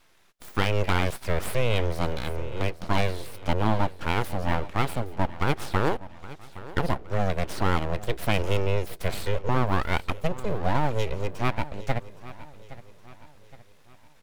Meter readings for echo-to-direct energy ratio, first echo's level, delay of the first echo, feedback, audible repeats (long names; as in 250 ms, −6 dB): −16.0 dB, −17.0 dB, 817 ms, 44%, 3